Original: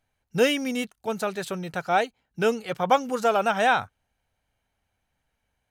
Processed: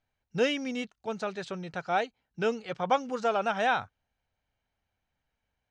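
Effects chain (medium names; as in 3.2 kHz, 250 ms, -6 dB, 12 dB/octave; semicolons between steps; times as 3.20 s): low-pass 6.3 kHz 24 dB/octave; trim -5.5 dB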